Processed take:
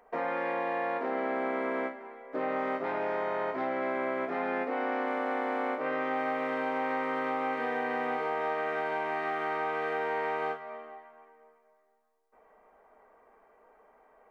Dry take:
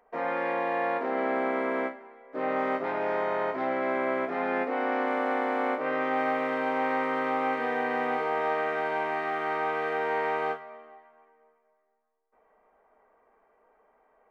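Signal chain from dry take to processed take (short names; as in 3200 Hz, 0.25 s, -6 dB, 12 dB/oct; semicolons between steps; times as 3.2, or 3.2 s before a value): compressor 2.5:1, threshold -36 dBFS, peak gain reduction 8.5 dB; gain +4 dB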